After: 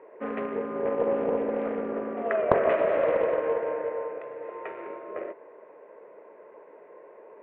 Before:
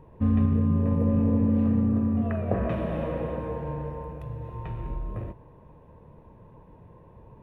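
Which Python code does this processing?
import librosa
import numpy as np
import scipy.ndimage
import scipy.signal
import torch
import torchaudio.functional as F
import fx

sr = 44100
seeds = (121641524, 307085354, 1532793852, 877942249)

y = fx.cabinet(x, sr, low_hz=380.0, low_slope=24, high_hz=2500.0, hz=(410.0, 610.0, 930.0, 1400.0, 2100.0), db=(7, 7, -5, 7, 10))
y = fx.doppler_dist(y, sr, depth_ms=0.33)
y = y * librosa.db_to_amplitude(4.0)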